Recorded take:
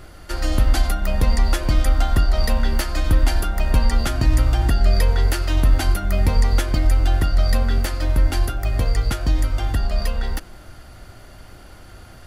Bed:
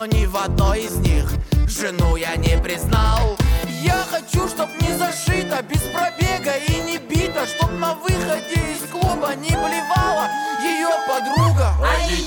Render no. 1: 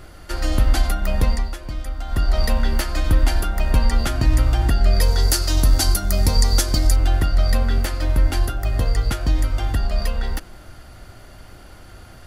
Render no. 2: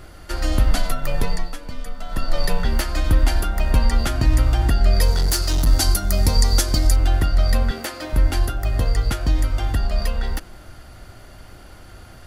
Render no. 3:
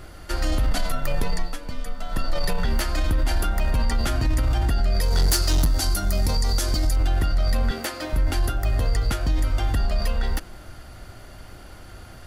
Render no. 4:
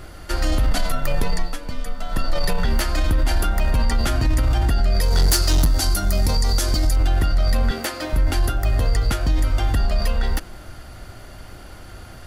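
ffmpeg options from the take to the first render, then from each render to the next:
-filter_complex "[0:a]asettb=1/sr,asplit=3[a][b][c];[a]atrim=end=5.014[d];[b]atrim=start=5.01:end=6.96,asetpts=PTS-STARTPTS,afade=t=in:d=0.004:c=qsin,afade=t=out:st=1.946:d=0.004:c=qsin,highshelf=f=3.7k:t=q:w=1.5:g=9.5[e];[c]atrim=start=6.956[f];[d][e]acrossfade=d=0.004:c1=hsin:c2=qsin[g];[g][f]acrossfade=d=0.004:c1=qsin:c2=hsin,asettb=1/sr,asplit=3[h][i][j];[h]atrim=end=8.404[k];[i]atrim=start=8.4:end=9.09,asetpts=PTS-STARTPTS,afade=t=in:d=0.004:c=qsin,afade=t=out:st=0.686:d=0.004:c=qsin,bandreject=f=2.3k:w=9.7[l];[j]atrim=start=9.086[m];[k][l]acrossfade=d=0.004:c1=hsin:c2=qsin[n];[n][m]acrossfade=d=0.004:c1=qsin:c2=hsin,asplit=3[o][p][q];[o]atrim=end=1.51,asetpts=PTS-STARTPTS,afade=t=out:st=1.24:d=0.27:silence=0.281838[r];[p]atrim=start=1.51:end=2.04,asetpts=PTS-STARTPTS,volume=-11dB[s];[q]atrim=start=2.04,asetpts=PTS-STARTPTS,afade=t=in:d=0.27:silence=0.281838[t];[r][s][t]concat=n=3:v=0:a=1"
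-filter_complex "[0:a]asettb=1/sr,asplit=3[a][b][c];[a]atrim=end=0.714[d];[b]atrim=start=0.71:end=2.65,asetpts=PTS-STARTPTS,afade=t=in:d=0.004:c=qsin,afade=t=out:st=1.936:d=0.004:c=qsin,afreqshift=-55[e];[c]atrim=start=2.646[f];[d][e]acrossfade=d=0.004:c1=hsin:c2=qsin[g];[g][f]acrossfade=d=0.004:c1=qsin:c2=hsin,asettb=1/sr,asplit=3[h][i][j];[h]atrim=end=5.124[k];[i]atrim=start=5.12:end=5.67,asetpts=PTS-STARTPTS,afade=t=in:d=0.004:c=qsin,afade=t=out:st=0.546:d=0.004:c=qsin,volume=14.5dB,asoftclip=hard,volume=-14.5dB[l];[j]atrim=start=5.666[m];[k][l]acrossfade=d=0.004:c1=hsin:c2=qsin[n];[n][m]acrossfade=d=0.004:c1=qsin:c2=hsin,asettb=1/sr,asplit=3[o][p][q];[o]atrim=end=7.714[r];[p]atrim=start=7.71:end=8.13,asetpts=PTS-STARTPTS,afade=t=in:d=0.004:c=qsin,afade=t=out:st=0.416:d=0.004:c=qsin,highpass=240[s];[q]atrim=start=8.126[t];[r][s]acrossfade=d=0.004:c1=hsin:c2=qsin[u];[u][t]acrossfade=d=0.004:c1=qsin:c2=hsin"
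-af "alimiter=limit=-14.5dB:level=0:latency=1:release=12"
-af "volume=3dB"

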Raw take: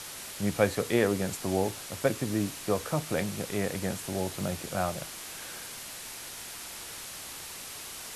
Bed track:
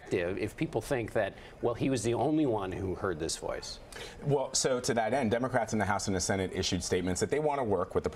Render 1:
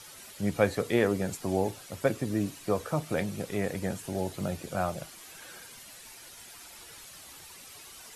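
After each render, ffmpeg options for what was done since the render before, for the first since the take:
-af "afftdn=nr=10:nf=-42"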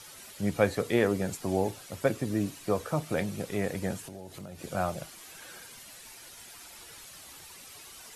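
-filter_complex "[0:a]asettb=1/sr,asplit=3[a][b][c];[a]atrim=end=4.034[d];[b]atrim=start=4.03:end=4.64,asetpts=PTS-STARTPTS,afade=t=in:d=0.004:c=qsin,afade=t=out:st=0.606:d=0.004:c=qsin,acompressor=threshold=-40dB:ratio=6:attack=3.2:release=140:knee=1:detection=peak[e];[c]atrim=start=4.636[f];[d][e]acrossfade=d=0.004:c1=hsin:c2=qsin[g];[g][f]acrossfade=d=0.004:c1=qsin:c2=hsin"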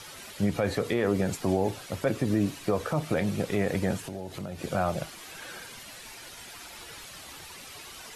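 -filter_complex "[0:a]acrossover=split=5000[a][b];[a]acontrast=68[c];[c][b]amix=inputs=2:normalize=0,alimiter=limit=-16dB:level=0:latency=1:release=73"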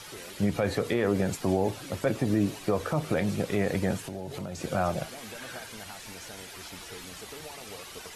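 -filter_complex "[1:a]volume=-16.5dB[a];[0:a][a]amix=inputs=2:normalize=0"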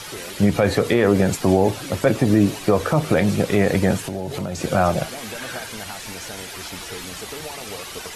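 -af "volume=9.5dB"

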